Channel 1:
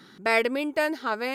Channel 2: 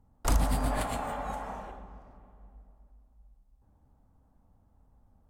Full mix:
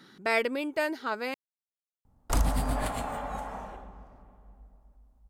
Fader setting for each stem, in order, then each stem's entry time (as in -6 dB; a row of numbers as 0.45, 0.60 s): -4.0, 0.0 dB; 0.00, 2.05 s